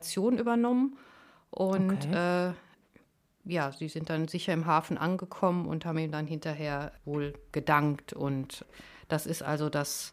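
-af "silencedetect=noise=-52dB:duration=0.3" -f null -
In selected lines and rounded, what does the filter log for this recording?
silence_start: 2.98
silence_end: 3.45 | silence_duration: 0.48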